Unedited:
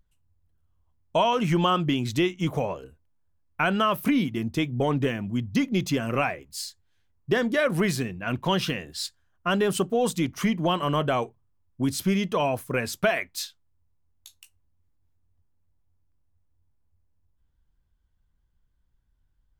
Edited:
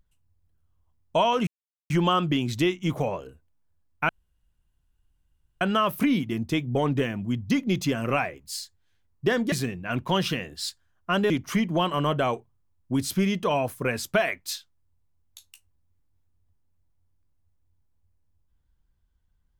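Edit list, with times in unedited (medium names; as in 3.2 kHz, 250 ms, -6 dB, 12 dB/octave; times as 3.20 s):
1.47 s: insert silence 0.43 s
3.66 s: insert room tone 1.52 s
7.57–7.89 s: delete
9.67–10.19 s: delete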